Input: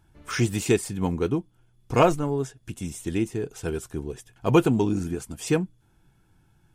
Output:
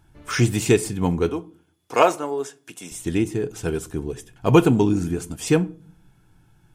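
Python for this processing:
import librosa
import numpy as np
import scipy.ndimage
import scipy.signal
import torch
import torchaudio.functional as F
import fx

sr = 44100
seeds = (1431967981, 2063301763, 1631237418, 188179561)

y = fx.highpass(x, sr, hz=450.0, slope=12, at=(1.29, 2.92))
y = fx.room_shoebox(y, sr, seeds[0], volume_m3=380.0, walls='furnished', distance_m=0.37)
y = y * librosa.db_to_amplitude(4.0)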